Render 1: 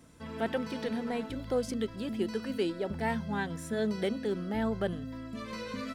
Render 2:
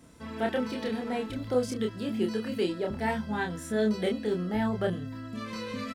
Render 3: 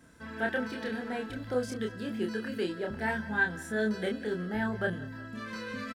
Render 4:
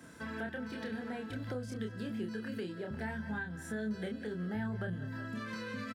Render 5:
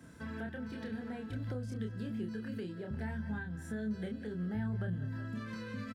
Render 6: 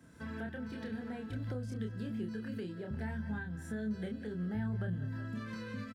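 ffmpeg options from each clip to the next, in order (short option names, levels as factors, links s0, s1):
-filter_complex "[0:a]asplit=2[s0][s1];[s1]adelay=28,volume=0.708[s2];[s0][s2]amix=inputs=2:normalize=0,volume=1.12"
-af "equalizer=f=1600:t=o:w=0.26:g=14,aecho=1:1:182|364|546|728|910:0.106|0.0593|0.0332|0.0186|0.0104,volume=0.631"
-filter_complex "[0:a]highpass=97,acrossover=split=150[s0][s1];[s1]acompressor=threshold=0.00562:ratio=6[s2];[s0][s2]amix=inputs=2:normalize=0,volume=1.78"
-af "lowshelf=f=190:g=12,volume=0.562"
-af "dynaudnorm=f=110:g=3:m=1.78,volume=0.562"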